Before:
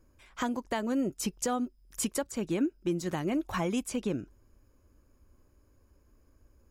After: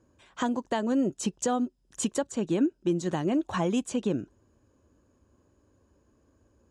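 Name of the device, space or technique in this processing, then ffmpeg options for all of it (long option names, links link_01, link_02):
car door speaker: -af "highpass=100,equalizer=frequency=1300:width_type=q:width=4:gain=-4,equalizer=frequency=2200:width_type=q:width=4:gain=-9,equalizer=frequency=5100:width_type=q:width=4:gain=-8,lowpass=frequency=8000:width=0.5412,lowpass=frequency=8000:width=1.3066,volume=4dB"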